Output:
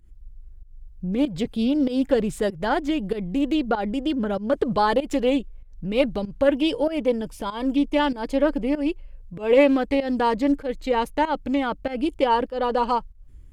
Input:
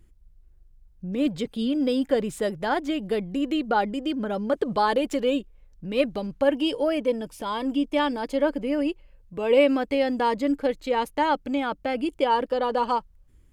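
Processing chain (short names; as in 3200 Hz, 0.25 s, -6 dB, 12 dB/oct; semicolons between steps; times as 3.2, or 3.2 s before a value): pump 96 bpm, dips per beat 1, -16 dB, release 0.172 s; low shelf 130 Hz +11 dB; Doppler distortion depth 0.13 ms; gain +1.5 dB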